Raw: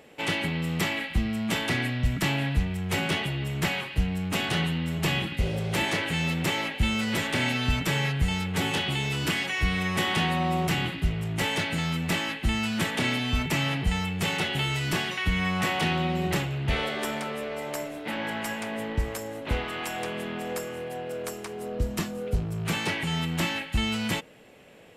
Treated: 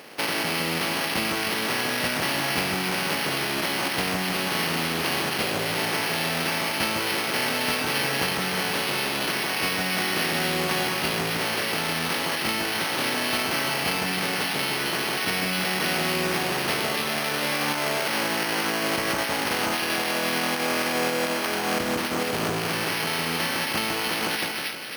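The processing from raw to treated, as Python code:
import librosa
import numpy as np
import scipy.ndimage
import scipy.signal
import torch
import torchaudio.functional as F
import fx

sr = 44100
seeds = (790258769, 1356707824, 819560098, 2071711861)

p1 = fx.spec_flatten(x, sr, power=0.43)
p2 = scipy.signal.sosfilt(scipy.signal.butter(2, 190.0, 'highpass', fs=sr, output='sos'), p1)
p3 = fx.echo_split(p2, sr, split_hz=1500.0, low_ms=157, high_ms=268, feedback_pct=52, wet_db=-3.5)
p4 = fx.over_compress(p3, sr, threshold_db=-33.0, ratio=-0.5)
p5 = p3 + F.gain(torch.from_numpy(p4), 0.0).numpy()
y = np.repeat(scipy.signal.resample_poly(p5, 1, 6), 6)[:len(p5)]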